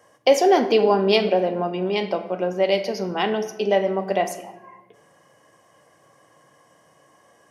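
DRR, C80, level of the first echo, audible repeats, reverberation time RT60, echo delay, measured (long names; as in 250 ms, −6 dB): 8.5 dB, 13.5 dB, no echo audible, no echo audible, 1.0 s, no echo audible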